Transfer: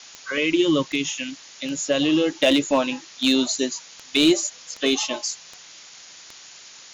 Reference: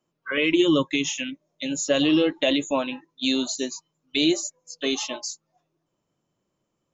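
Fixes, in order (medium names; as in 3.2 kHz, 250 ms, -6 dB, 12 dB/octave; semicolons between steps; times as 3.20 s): clip repair -10 dBFS; de-click; noise print and reduce 30 dB; gain correction -4.5 dB, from 2.35 s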